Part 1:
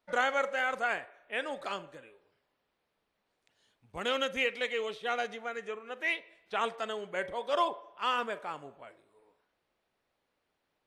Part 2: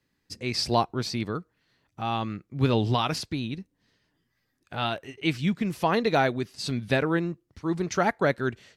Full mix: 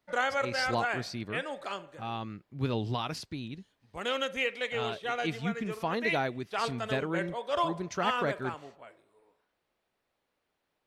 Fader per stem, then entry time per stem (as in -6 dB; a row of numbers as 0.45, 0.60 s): -0.5, -8.0 dB; 0.00, 0.00 s